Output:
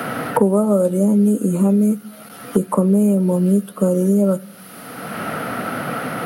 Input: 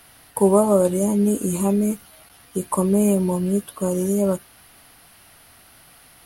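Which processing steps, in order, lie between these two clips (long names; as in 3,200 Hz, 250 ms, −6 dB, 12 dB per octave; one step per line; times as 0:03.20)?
high-pass filter 120 Hz 24 dB per octave
high-shelf EQ 12,000 Hz +6.5 dB
hollow resonant body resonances 220/480/1,300 Hz, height 13 dB, ringing for 20 ms
on a send at −23 dB: convolution reverb RT60 0.55 s, pre-delay 3 ms
on the sum: multiband upward and downward compressor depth 100%
level −7 dB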